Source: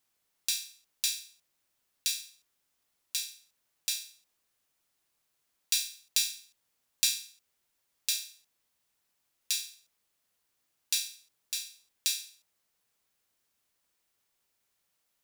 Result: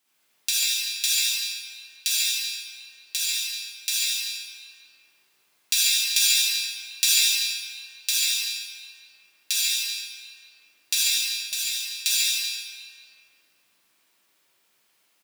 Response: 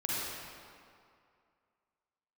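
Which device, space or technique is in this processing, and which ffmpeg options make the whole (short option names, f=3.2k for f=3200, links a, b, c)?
PA in a hall: -filter_complex "[0:a]highpass=170,equalizer=f=2.7k:t=o:w=1.2:g=4,aecho=1:1:142:0.596[a];[1:a]atrim=start_sample=2205[b];[a][b]afir=irnorm=-1:irlink=0,volume=4dB"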